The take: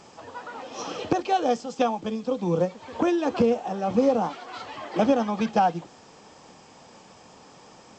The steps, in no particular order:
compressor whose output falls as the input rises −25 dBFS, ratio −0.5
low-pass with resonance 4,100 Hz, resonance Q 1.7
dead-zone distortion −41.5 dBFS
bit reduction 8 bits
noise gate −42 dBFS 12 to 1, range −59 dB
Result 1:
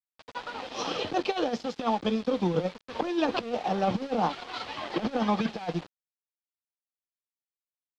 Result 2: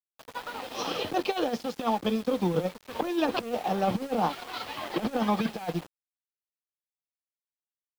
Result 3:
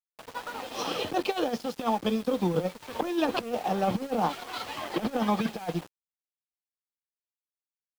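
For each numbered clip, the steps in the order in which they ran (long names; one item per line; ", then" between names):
compressor whose output falls as the input rises, then dead-zone distortion, then noise gate, then bit reduction, then low-pass with resonance
compressor whose output falls as the input rises, then dead-zone distortion, then low-pass with resonance, then noise gate, then bit reduction
low-pass with resonance, then noise gate, then compressor whose output falls as the input rises, then dead-zone distortion, then bit reduction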